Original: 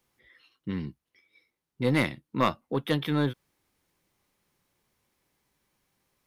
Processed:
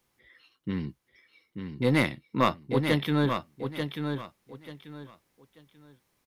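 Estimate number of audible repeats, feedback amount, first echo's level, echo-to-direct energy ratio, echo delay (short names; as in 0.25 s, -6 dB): 3, 25%, -6.5 dB, -6.0 dB, 0.888 s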